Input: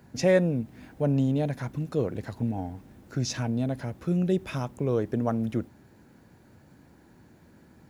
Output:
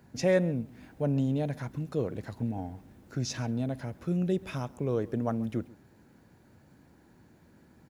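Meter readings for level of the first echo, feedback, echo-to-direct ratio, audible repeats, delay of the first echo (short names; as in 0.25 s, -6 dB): -21.5 dB, no steady repeat, -21.5 dB, 1, 0.136 s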